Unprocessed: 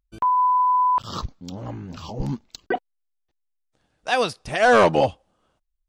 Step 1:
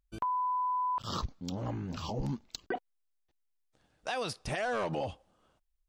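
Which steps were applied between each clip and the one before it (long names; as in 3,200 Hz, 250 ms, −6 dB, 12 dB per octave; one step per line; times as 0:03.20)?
brickwall limiter −20.5 dBFS, peak gain reduction 11 dB
downward compressor, threshold −28 dBFS, peak gain reduction 5.5 dB
level −2 dB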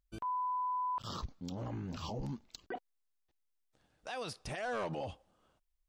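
brickwall limiter −29.5 dBFS, peak gain reduction 7 dB
level −2.5 dB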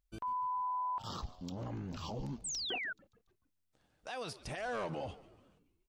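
echo with shifted repeats 143 ms, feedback 54%, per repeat −91 Hz, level −17.5 dB
sound drawn into the spectrogram fall, 0:02.44–0:02.93, 1,400–8,700 Hz −38 dBFS
level −1 dB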